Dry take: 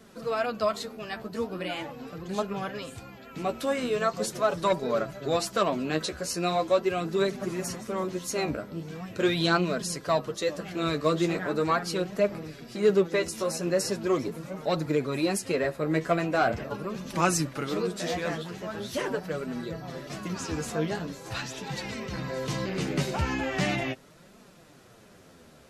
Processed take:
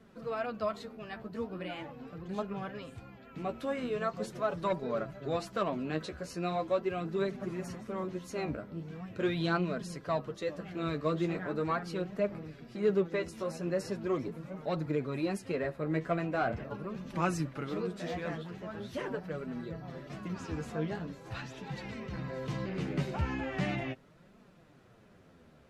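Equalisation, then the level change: tone controls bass +4 dB, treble -11 dB; -7.0 dB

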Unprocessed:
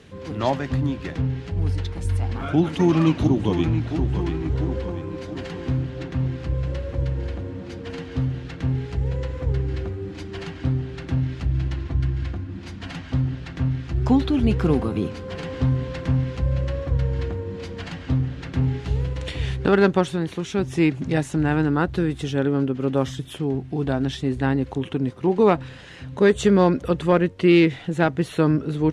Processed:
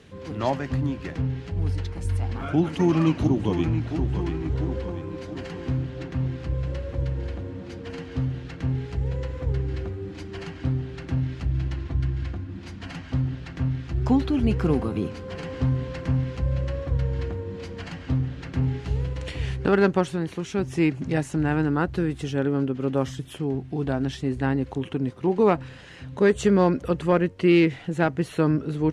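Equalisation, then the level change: dynamic bell 3.6 kHz, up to -7 dB, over -56 dBFS, Q 7.4; -2.5 dB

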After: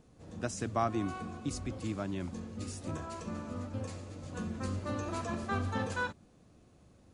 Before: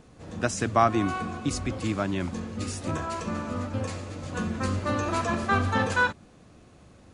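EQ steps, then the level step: peaking EQ 1.8 kHz -5 dB 2.5 oct; -7.5 dB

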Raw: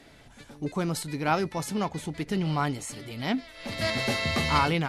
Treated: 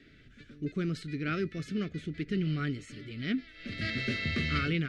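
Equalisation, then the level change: Butterworth band-stop 910 Hz, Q 1.1; low-pass 3.3 kHz 12 dB/octave; high-order bell 700 Hz -10 dB 1.2 oct; -2.5 dB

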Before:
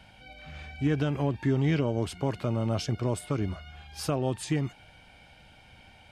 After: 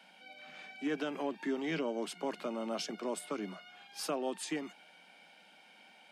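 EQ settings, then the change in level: steep high-pass 170 Hz 96 dB/octave; bass shelf 310 Hz -8 dB; -3.0 dB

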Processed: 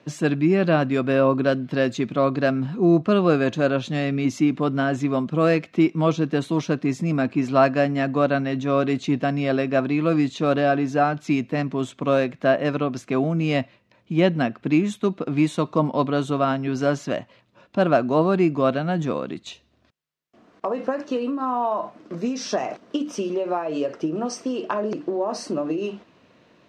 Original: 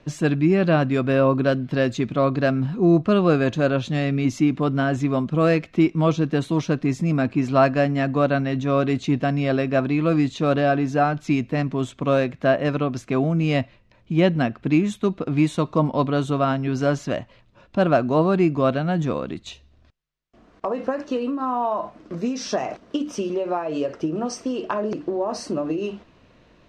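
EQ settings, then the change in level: high-pass 150 Hz; 0.0 dB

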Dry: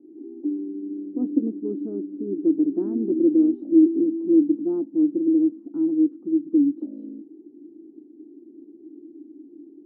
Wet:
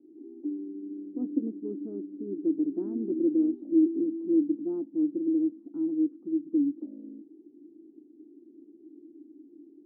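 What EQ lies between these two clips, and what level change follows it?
distance through air 260 m; -6.5 dB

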